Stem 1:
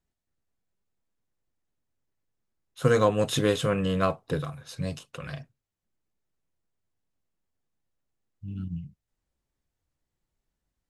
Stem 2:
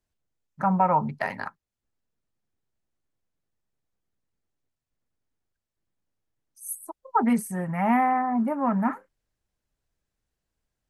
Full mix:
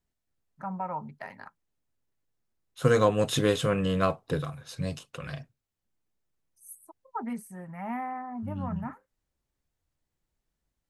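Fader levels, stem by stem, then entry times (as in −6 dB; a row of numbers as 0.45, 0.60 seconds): −0.5, −12.5 decibels; 0.00, 0.00 seconds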